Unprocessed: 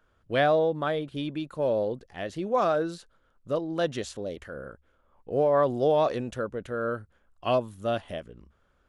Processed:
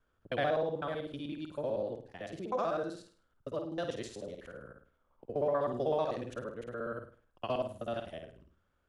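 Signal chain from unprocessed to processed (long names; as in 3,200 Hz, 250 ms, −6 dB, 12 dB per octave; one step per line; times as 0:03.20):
reversed piece by piece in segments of 63 ms
flutter between parallel walls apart 8.9 metres, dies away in 0.42 s
level −9 dB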